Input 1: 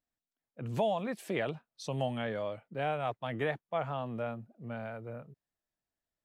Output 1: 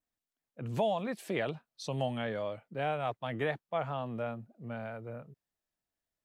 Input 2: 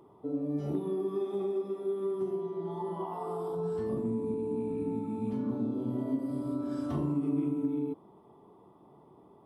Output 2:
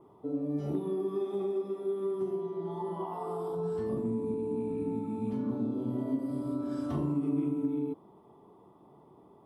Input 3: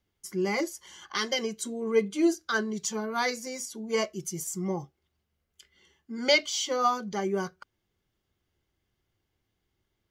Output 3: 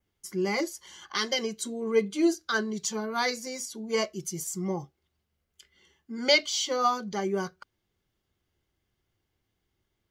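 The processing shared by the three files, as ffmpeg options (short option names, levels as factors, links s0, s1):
-af "adynamicequalizer=threshold=0.00282:dfrequency=4200:dqfactor=2.9:tfrequency=4200:tqfactor=2.9:attack=5:release=100:ratio=0.375:range=2:mode=boostabove:tftype=bell"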